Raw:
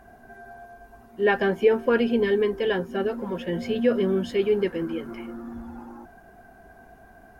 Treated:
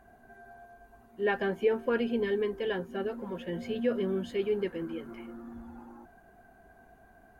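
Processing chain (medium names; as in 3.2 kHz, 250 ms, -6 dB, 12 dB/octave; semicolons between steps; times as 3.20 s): band-stop 5.3 kHz, Q 8.5; trim -7.5 dB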